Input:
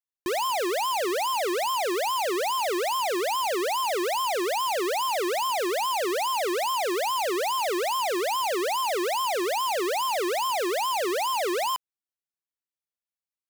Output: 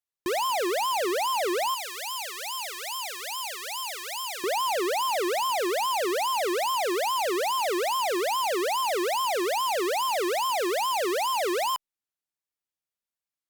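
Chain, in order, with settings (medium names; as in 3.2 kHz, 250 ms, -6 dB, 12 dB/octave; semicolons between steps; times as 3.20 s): 1.74–4.44 s: amplifier tone stack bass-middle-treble 10-0-10; Opus 256 kbps 48 kHz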